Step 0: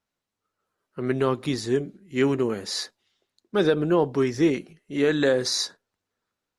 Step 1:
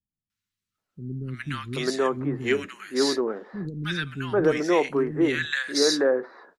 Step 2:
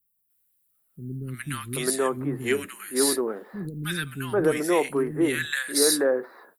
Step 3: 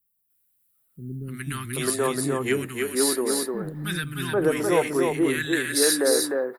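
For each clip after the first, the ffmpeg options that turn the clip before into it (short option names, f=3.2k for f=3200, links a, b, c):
-filter_complex "[0:a]acrossover=split=230|1400[a][b][c];[c]adelay=300[d];[b]adelay=780[e];[a][e][d]amix=inputs=3:normalize=0,adynamicequalizer=threshold=0.00631:dfrequency=1700:dqfactor=1:tfrequency=1700:tqfactor=1:attack=5:release=100:ratio=0.375:range=3.5:mode=boostabove:tftype=bell"
-af "aexciter=amount=6.9:drive=9.7:freq=8.8k,volume=-1dB"
-af "aecho=1:1:303:0.668"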